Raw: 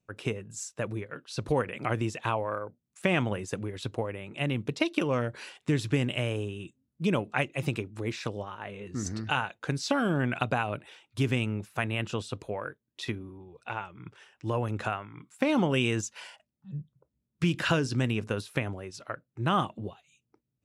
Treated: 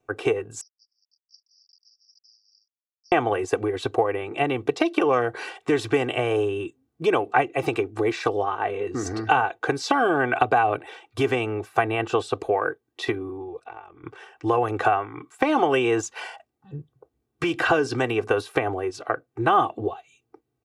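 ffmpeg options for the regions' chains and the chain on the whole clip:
ffmpeg -i in.wav -filter_complex "[0:a]asettb=1/sr,asplit=3[link_01][link_02][link_03];[link_01]atrim=end=0.614[link_04];[link_02]atrim=start=0.61:end=3.12,asetpts=PTS-STARTPTS,afade=type=in:duration=0.004:curve=qsin,afade=type=out:start_time=2.506:duration=0.004:curve=qsin,aeval=exprs='sgn(val(0))*max(abs(val(0))-0.0126,0)':channel_layout=same,asuperpass=centerf=5200:order=12:qfactor=4.9[link_05];[link_03]atrim=start=3.116[link_06];[link_04][link_05]acrossfade=duration=0.004:curve1=hsin:curve2=qsin[link_07];[link_07][link_06]acrossfade=duration=0.004:curve1=qsin:curve2=hsin,asettb=1/sr,asplit=3[link_08][link_09][link_10];[link_08]atrim=end=13.594[link_11];[link_09]atrim=start=13.59:end=14.04,asetpts=PTS-STARTPTS,afade=type=in:duration=0.004:curve=qsin,afade=type=out:start_time=0.446:duration=0.004:curve=qsin,tremolo=f=45:d=0.788,acompressor=threshold=-56dB:ratio=3:attack=3.2:release=140:knee=1:detection=peak[link_12];[link_10]atrim=start=14.036[link_13];[link_11][link_12]acrossfade=duration=0.004:curve1=hsin:curve2=qsin[link_14];[link_14][link_13]acrossfade=duration=0.004:curve1=qsin:curve2=hsin,equalizer=frequency=670:width=0.4:gain=15,acrossover=split=530|1300[link_15][link_16][link_17];[link_15]acompressor=threshold=-26dB:ratio=4[link_18];[link_16]acompressor=threshold=-22dB:ratio=4[link_19];[link_17]acompressor=threshold=-29dB:ratio=4[link_20];[link_18][link_19][link_20]amix=inputs=3:normalize=0,aecho=1:1:2.6:0.76" out.wav

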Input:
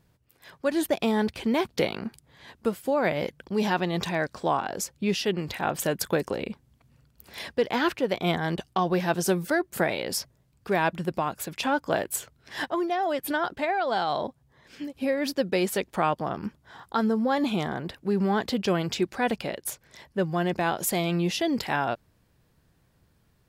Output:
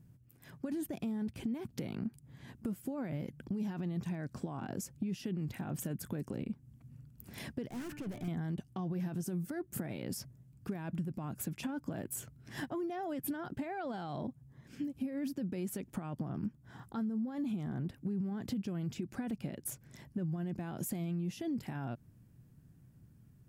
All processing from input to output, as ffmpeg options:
ffmpeg -i in.wav -filter_complex "[0:a]asettb=1/sr,asplit=3[link_01][link_02][link_03];[link_01]atrim=end=7.704[link_04];[link_02]atrim=start=7.7:end=8.28,asetpts=PTS-STARTPTS,afade=type=in:duration=0.004:curve=qsin,afade=type=out:start_time=0.576:duration=0.004:curve=qsin,bandreject=frequency=295.4:width_type=h:width=4,bandreject=frequency=590.8:width_type=h:width=4,bandreject=frequency=886.2:width_type=h:width=4,bandreject=frequency=1181.6:width_type=h:width=4,bandreject=frequency=1477:width_type=h:width=4,bandreject=frequency=1772.4:width_type=h:width=4,bandreject=frequency=2067.8:width_type=h:width=4,bandreject=frequency=2363.2:width_type=h:width=4,bandreject=frequency=2658.6:width_type=h:width=4,bandreject=frequency=2954:width_type=h:width=4,aeval=exprs='(tanh(79.4*val(0)+0.25)-tanh(0.25))/79.4':channel_layout=same[link_05];[link_03]atrim=start=8.276[link_06];[link_04][link_05]acrossfade=duration=0.004:curve1=hsin:curve2=qsin[link_07];[link_07][link_06]acrossfade=duration=0.004:curve1=qsin:curve2=hsin,alimiter=limit=-23dB:level=0:latency=1:release=32,equalizer=frequency=125:width_type=o:width=1:gain=11,equalizer=frequency=250:width_type=o:width=1:gain=7,equalizer=frequency=500:width_type=o:width=1:gain=-6,equalizer=frequency=1000:width_type=o:width=1:gain=-6,equalizer=frequency=2000:width_type=o:width=1:gain=-4,equalizer=frequency=4000:width_type=o:width=1:gain=-10,acompressor=threshold=-33dB:ratio=4,volume=-2.5dB" out.wav

